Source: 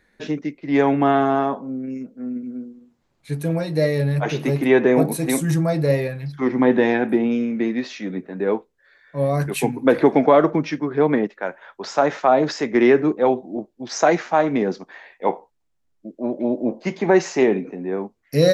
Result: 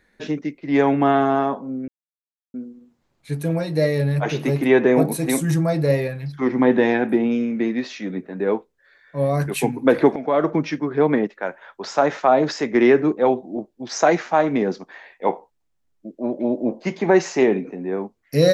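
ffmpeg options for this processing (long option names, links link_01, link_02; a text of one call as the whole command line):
ffmpeg -i in.wav -filter_complex "[0:a]asplit=4[link_01][link_02][link_03][link_04];[link_01]atrim=end=1.88,asetpts=PTS-STARTPTS,afade=type=out:start_time=1.876:duration=0.004:curve=hsin[link_05];[link_02]atrim=start=1.88:end=2.54,asetpts=PTS-STARTPTS,volume=0[link_06];[link_03]atrim=start=2.54:end=10.16,asetpts=PTS-STARTPTS,afade=type=in:duration=0.004:curve=hsin,afade=type=out:start_time=7.616:duration=0.004:curve=hsin:silence=0.141254[link_07];[link_04]atrim=start=10.16,asetpts=PTS-STARTPTS,afade=type=in:duration=0.42:silence=0.141254[link_08];[link_05][link_06][link_07][link_08]concat=n=4:v=0:a=1" out.wav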